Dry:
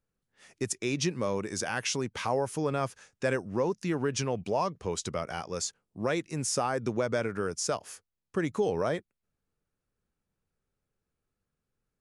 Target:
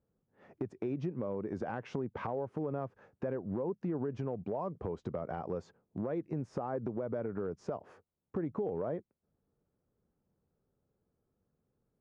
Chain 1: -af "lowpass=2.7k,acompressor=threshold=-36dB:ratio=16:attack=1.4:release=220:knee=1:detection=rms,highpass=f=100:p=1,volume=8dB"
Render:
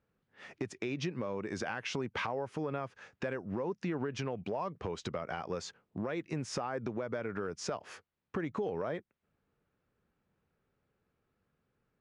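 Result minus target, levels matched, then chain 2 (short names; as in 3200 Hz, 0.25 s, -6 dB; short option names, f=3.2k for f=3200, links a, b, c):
2000 Hz band +10.5 dB
-af "lowpass=740,acompressor=threshold=-36dB:ratio=16:attack=1.4:release=220:knee=1:detection=rms,highpass=f=100:p=1,volume=8dB"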